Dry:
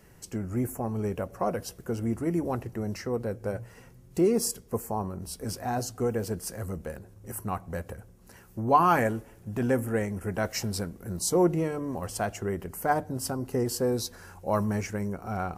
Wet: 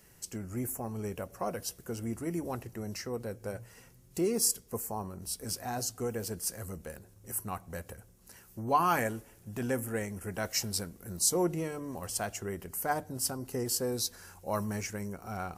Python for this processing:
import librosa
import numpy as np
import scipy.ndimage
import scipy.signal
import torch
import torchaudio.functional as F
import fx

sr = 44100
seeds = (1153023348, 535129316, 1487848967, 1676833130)

y = fx.high_shelf(x, sr, hz=2600.0, db=11.0)
y = y * 10.0 ** (-7.0 / 20.0)